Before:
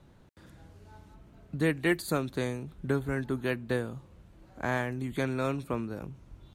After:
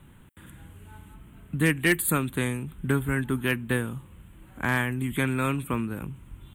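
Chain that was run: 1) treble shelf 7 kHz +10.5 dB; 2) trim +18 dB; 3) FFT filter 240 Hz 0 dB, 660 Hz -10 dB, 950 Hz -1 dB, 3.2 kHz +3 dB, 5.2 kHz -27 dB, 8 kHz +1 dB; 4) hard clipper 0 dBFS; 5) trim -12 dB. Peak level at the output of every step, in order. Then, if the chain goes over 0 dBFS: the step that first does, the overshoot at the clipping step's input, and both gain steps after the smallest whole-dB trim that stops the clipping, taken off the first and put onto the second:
-13.0 dBFS, +5.0 dBFS, +5.0 dBFS, 0.0 dBFS, -12.0 dBFS; step 2, 5.0 dB; step 2 +13 dB, step 5 -7 dB

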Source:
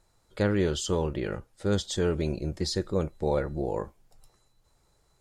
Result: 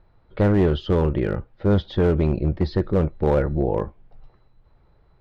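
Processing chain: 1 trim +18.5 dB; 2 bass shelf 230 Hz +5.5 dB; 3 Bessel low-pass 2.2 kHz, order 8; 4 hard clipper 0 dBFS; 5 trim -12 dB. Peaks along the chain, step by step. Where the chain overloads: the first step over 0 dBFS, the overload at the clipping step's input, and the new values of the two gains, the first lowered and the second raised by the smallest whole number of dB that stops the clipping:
+6.5 dBFS, +9.5 dBFS, +9.0 dBFS, 0.0 dBFS, -12.0 dBFS; step 1, 9.0 dB; step 1 +9.5 dB, step 5 -3 dB

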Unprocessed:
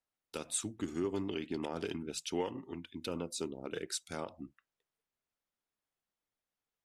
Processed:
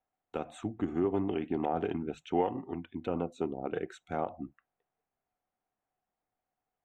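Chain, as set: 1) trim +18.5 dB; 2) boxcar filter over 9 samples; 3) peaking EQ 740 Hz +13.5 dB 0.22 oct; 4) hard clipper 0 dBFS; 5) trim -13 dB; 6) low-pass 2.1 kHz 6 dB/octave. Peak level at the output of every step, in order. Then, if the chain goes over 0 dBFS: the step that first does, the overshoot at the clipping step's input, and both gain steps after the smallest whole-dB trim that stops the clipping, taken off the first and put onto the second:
-3.5 dBFS, -5.5 dBFS, -4.0 dBFS, -4.0 dBFS, -17.0 dBFS, -17.5 dBFS; nothing clips

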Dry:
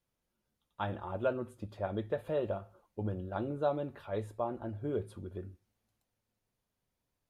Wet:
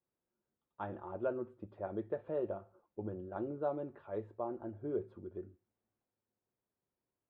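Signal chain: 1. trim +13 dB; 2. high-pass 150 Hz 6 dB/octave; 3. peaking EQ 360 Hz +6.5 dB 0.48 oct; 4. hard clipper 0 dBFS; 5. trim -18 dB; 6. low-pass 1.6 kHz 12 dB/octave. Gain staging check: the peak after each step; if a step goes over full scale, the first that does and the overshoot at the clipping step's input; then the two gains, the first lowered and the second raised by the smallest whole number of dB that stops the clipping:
-6.0 dBFS, -6.0 dBFS, -5.0 dBFS, -5.0 dBFS, -23.0 dBFS, -23.0 dBFS; nothing clips

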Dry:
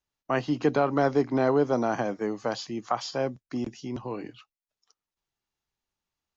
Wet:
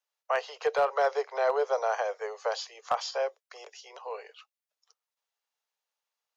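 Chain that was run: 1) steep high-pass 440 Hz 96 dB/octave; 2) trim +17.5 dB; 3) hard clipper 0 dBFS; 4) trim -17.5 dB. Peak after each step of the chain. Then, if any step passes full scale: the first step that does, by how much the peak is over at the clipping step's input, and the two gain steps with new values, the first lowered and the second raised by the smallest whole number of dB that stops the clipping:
-13.0 dBFS, +4.5 dBFS, 0.0 dBFS, -17.5 dBFS; step 2, 4.5 dB; step 2 +12.5 dB, step 4 -12.5 dB

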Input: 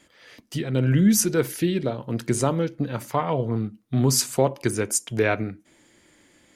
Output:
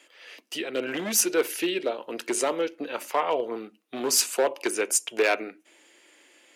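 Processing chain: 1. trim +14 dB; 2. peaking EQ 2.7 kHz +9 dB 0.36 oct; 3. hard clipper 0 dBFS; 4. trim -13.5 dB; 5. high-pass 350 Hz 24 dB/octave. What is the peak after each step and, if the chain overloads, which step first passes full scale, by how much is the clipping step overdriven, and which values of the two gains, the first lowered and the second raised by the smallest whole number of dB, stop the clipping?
+6.5 dBFS, +7.0 dBFS, 0.0 dBFS, -13.5 dBFS, -9.5 dBFS; step 1, 7.0 dB; step 1 +7 dB, step 4 -6.5 dB

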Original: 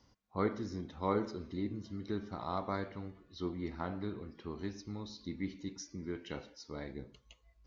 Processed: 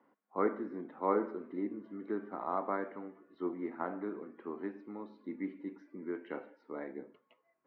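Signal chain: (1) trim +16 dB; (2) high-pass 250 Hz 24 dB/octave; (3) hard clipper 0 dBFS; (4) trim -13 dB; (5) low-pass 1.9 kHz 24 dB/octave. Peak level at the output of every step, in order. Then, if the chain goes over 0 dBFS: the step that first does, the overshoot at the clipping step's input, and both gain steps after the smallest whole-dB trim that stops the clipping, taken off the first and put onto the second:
-2.5 dBFS, -4.0 dBFS, -4.0 dBFS, -17.0 dBFS, -17.0 dBFS; nothing clips

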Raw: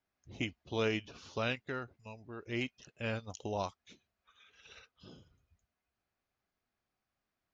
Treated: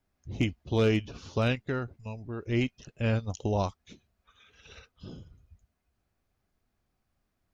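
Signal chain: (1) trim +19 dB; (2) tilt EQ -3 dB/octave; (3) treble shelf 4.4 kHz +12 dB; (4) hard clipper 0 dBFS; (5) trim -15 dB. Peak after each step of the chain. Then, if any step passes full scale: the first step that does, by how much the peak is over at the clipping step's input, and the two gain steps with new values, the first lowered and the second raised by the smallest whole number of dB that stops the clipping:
-1.5 dBFS, +3.0 dBFS, +3.5 dBFS, 0.0 dBFS, -15.0 dBFS; step 2, 3.5 dB; step 1 +15 dB, step 5 -11 dB

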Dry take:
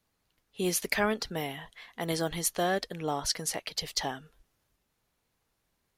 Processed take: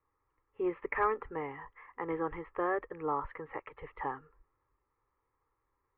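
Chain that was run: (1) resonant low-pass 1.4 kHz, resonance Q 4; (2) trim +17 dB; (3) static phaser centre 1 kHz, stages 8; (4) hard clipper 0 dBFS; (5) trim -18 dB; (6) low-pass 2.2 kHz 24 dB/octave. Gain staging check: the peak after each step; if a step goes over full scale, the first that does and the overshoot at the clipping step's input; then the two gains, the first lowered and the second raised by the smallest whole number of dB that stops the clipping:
-8.5 dBFS, +8.5 dBFS, +3.5 dBFS, 0.0 dBFS, -18.0 dBFS, -17.0 dBFS; step 2, 3.5 dB; step 2 +13 dB, step 5 -14 dB

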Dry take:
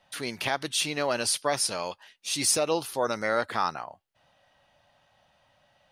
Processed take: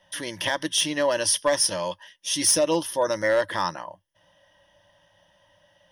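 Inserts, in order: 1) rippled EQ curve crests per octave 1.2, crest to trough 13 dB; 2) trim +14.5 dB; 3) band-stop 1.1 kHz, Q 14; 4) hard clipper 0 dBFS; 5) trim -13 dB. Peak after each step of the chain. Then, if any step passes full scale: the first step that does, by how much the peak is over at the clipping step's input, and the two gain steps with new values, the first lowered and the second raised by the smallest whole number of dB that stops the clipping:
-7.5 dBFS, +7.0 dBFS, +7.0 dBFS, 0.0 dBFS, -13.0 dBFS; step 2, 7.0 dB; step 2 +7.5 dB, step 5 -6 dB

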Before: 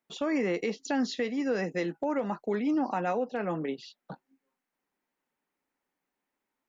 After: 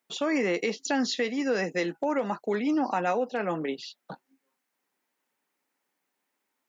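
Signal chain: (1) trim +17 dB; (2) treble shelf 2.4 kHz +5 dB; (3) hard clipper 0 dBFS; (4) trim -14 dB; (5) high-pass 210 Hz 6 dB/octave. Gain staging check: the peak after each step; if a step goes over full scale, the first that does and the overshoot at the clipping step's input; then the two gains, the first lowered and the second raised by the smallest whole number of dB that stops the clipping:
-2.5 dBFS, -2.0 dBFS, -2.0 dBFS, -16.0 dBFS, -15.0 dBFS; nothing clips

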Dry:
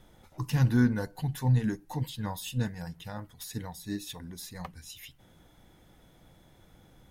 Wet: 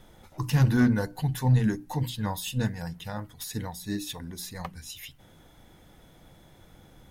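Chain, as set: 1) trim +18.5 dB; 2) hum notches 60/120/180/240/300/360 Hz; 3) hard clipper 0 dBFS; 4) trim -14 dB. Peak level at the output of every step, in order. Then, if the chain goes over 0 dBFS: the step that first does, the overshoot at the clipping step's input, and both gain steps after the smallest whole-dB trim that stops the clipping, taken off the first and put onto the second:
+6.0 dBFS, +4.5 dBFS, 0.0 dBFS, -14.0 dBFS; step 1, 4.5 dB; step 1 +13.5 dB, step 4 -9 dB

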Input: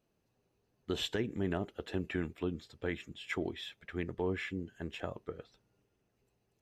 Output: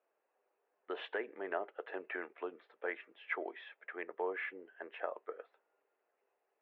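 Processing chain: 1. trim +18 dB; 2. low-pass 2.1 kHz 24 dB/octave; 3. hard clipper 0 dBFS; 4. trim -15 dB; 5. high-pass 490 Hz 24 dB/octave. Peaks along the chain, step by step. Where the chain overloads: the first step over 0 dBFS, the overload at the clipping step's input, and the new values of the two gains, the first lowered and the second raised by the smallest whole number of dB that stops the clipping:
-4.0 dBFS, -3.5 dBFS, -3.5 dBFS, -18.5 dBFS, -22.5 dBFS; nothing clips

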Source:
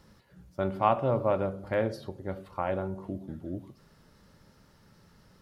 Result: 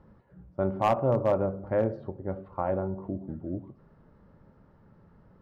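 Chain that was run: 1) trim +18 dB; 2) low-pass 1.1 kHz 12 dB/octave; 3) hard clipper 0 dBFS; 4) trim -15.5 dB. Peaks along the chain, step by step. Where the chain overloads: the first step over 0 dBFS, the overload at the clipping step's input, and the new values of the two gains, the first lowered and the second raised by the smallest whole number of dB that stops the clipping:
+8.5 dBFS, +7.0 dBFS, 0.0 dBFS, -15.5 dBFS; step 1, 7.0 dB; step 1 +11 dB, step 4 -8.5 dB

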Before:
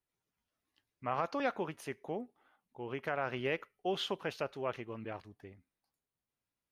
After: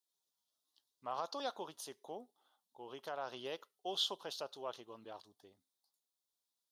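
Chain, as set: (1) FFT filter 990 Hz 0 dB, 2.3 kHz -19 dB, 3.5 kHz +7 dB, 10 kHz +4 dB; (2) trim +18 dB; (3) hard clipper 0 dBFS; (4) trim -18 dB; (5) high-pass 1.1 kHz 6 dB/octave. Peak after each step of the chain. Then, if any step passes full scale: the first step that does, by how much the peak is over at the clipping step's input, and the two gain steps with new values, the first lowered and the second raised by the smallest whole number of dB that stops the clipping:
-21.0 dBFS, -3.0 dBFS, -3.0 dBFS, -21.0 dBFS, -22.5 dBFS; nothing clips

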